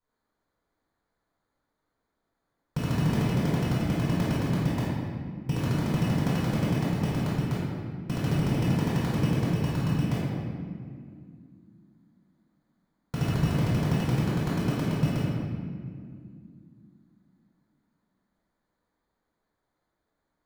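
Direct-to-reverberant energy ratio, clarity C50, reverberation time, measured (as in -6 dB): -11.5 dB, -3.5 dB, 2.2 s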